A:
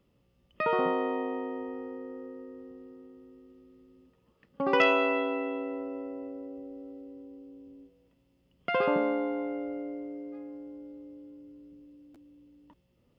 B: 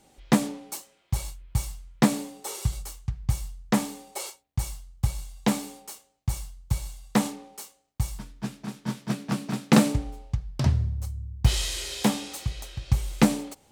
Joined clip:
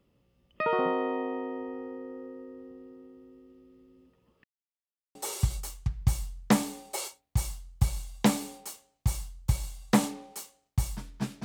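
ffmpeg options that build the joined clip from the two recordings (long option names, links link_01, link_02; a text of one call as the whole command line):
ffmpeg -i cue0.wav -i cue1.wav -filter_complex "[0:a]apad=whole_dur=11.44,atrim=end=11.44,asplit=2[link_01][link_02];[link_01]atrim=end=4.44,asetpts=PTS-STARTPTS,afade=type=out:start_time=4.436:duration=0.004:curve=hsin[link_03];[link_02]atrim=start=4.44:end=5.15,asetpts=PTS-STARTPTS,volume=0[link_04];[1:a]atrim=start=2.37:end=8.66,asetpts=PTS-STARTPTS,afade=type=in:duration=0.004:curve=hsin[link_05];[link_03][link_04][link_05]concat=n=3:v=0:a=1" out.wav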